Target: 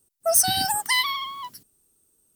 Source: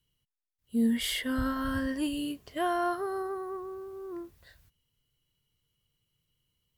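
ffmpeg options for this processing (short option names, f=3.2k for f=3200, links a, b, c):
-af "asetrate=127008,aresample=44100,crystalizer=i=3.5:c=0,volume=3.5dB"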